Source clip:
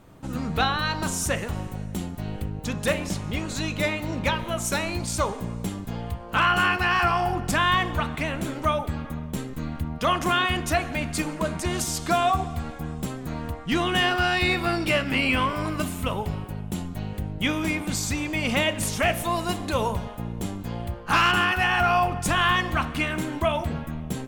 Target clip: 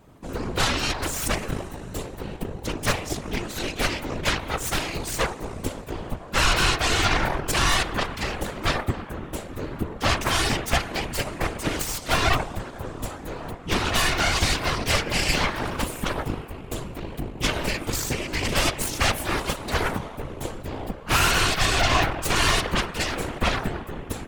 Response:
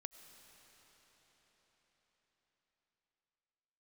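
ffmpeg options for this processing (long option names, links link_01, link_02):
-filter_complex "[0:a]asplit=2[link_01][link_02];[1:a]atrim=start_sample=2205,asetrate=28665,aresample=44100[link_03];[link_02][link_03]afir=irnorm=-1:irlink=0,volume=-6.5dB[link_04];[link_01][link_04]amix=inputs=2:normalize=0,aeval=exprs='0.398*(cos(1*acos(clip(val(0)/0.398,-1,1)))-cos(1*PI/2))+0.00501*(cos(3*acos(clip(val(0)/0.398,-1,1)))-cos(3*PI/2))+0.00251*(cos(4*acos(clip(val(0)/0.398,-1,1)))-cos(4*PI/2))+0.158*(cos(6*acos(clip(val(0)/0.398,-1,1)))-cos(6*PI/2))+0.126*(cos(7*acos(clip(val(0)/0.398,-1,1)))-cos(7*PI/2))':channel_layout=same,afftfilt=real='hypot(re,im)*cos(2*PI*random(0))':imag='hypot(re,im)*sin(2*PI*random(1))':win_size=512:overlap=0.75"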